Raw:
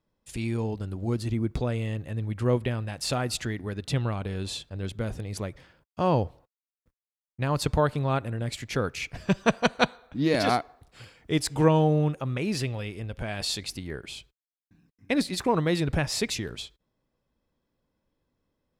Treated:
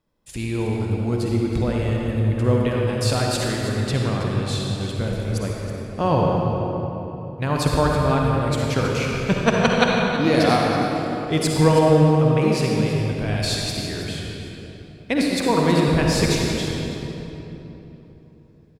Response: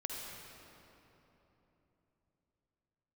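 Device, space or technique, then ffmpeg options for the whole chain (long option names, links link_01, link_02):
cave: -filter_complex "[0:a]aecho=1:1:322:0.237[link_01];[1:a]atrim=start_sample=2205[link_02];[link_01][link_02]afir=irnorm=-1:irlink=0,volume=6dB"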